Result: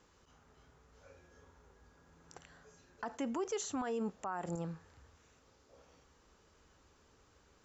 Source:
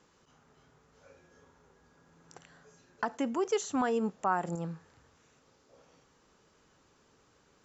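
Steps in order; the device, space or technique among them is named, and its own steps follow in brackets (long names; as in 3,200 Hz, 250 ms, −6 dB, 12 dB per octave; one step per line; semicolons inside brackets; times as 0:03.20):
car stereo with a boomy subwoofer (low shelf with overshoot 100 Hz +7.5 dB, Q 1.5; brickwall limiter −28 dBFS, peak gain reduction 10.5 dB)
level −1.5 dB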